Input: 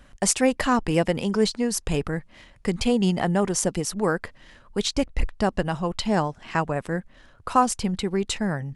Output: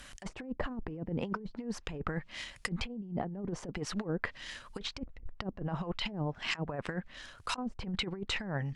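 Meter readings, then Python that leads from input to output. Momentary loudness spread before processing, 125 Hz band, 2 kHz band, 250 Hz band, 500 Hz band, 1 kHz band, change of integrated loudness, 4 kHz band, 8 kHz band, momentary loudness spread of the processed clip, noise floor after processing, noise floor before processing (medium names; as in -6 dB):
9 LU, -10.0 dB, -8.0 dB, -13.5 dB, -16.0 dB, -16.0 dB, -13.5 dB, -8.0 dB, -21.0 dB, 8 LU, -56 dBFS, -53 dBFS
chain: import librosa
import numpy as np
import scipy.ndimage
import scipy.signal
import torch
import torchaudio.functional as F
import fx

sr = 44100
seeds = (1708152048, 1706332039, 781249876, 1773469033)

y = fx.env_lowpass_down(x, sr, base_hz=320.0, full_db=-18.0)
y = fx.tilt_shelf(y, sr, db=-8.0, hz=1400.0)
y = fx.over_compress(y, sr, threshold_db=-35.0, ratio=-0.5)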